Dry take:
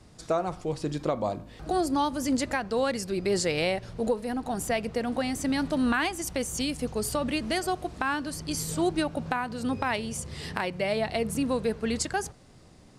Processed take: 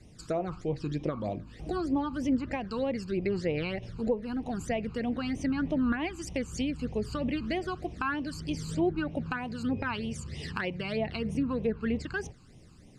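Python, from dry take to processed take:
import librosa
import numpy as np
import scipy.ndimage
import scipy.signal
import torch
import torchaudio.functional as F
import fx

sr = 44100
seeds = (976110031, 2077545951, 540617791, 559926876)

y = fx.phaser_stages(x, sr, stages=12, low_hz=590.0, high_hz=1500.0, hz=3.2, feedback_pct=20)
y = fx.env_lowpass_down(y, sr, base_hz=1600.0, full_db=-24.5)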